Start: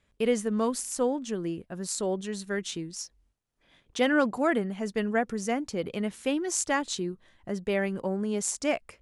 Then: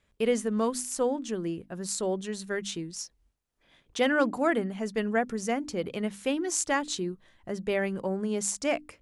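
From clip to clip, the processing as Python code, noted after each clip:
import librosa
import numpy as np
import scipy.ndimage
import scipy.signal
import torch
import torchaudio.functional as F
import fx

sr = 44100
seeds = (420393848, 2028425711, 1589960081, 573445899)

y = fx.hum_notches(x, sr, base_hz=50, count=6)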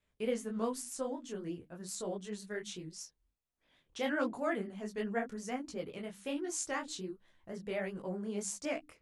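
y = fx.vibrato(x, sr, rate_hz=8.0, depth_cents=74.0)
y = fx.detune_double(y, sr, cents=48)
y = F.gain(torch.from_numpy(y), -5.5).numpy()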